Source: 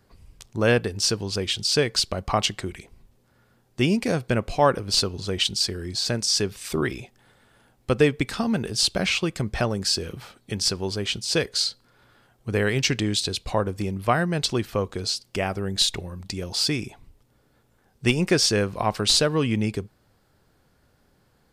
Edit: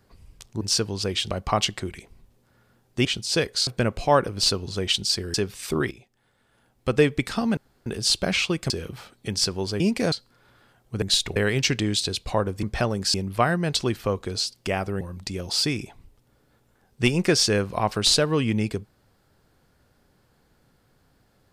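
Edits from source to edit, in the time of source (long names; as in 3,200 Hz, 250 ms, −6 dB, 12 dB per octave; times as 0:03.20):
0:00.61–0:00.93: remove
0:01.62–0:02.11: remove
0:03.86–0:04.18: swap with 0:11.04–0:11.66
0:05.85–0:06.36: remove
0:06.93–0:08.03: fade in quadratic, from −12 dB
0:08.59: splice in room tone 0.29 s
0:09.43–0:09.94: move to 0:13.83
0:15.70–0:16.04: move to 0:12.56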